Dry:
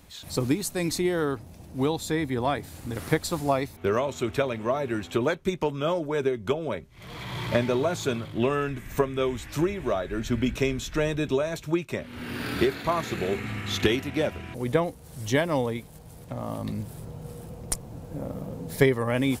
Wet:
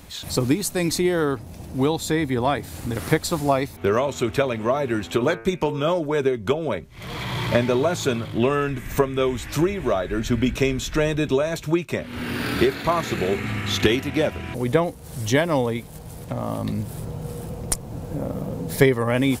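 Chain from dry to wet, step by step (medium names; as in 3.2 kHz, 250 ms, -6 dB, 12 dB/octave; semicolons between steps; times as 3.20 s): 4.99–5.88 s: de-hum 113.5 Hz, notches 26; in parallel at -1 dB: compression, threshold -36 dBFS, peak gain reduction 20 dB; on the sum: trim +3 dB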